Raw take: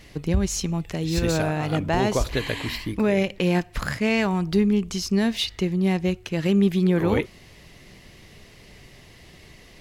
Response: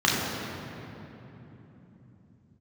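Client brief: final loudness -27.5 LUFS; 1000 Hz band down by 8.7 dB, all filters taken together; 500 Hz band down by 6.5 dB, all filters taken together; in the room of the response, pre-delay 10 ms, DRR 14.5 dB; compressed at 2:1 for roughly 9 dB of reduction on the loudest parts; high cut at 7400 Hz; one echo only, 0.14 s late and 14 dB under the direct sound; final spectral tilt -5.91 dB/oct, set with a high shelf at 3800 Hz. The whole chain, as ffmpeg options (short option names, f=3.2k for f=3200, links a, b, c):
-filter_complex "[0:a]lowpass=7.4k,equalizer=f=500:t=o:g=-7,equalizer=f=1k:t=o:g=-8.5,highshelf=f=3.8k:g=-7,acompressor=threshold=-33dB:ratio=2,aecho=1:1:140:0.2,asplit=2[a][b];[1:a]atrim=start_sample=2205,adelay=10[c];[b][c]afir=irnorm=-1:irlink=0,volume=-32.5dB[d];[a][d]amix=inputs=2:normalize=0,volume=4.5dB"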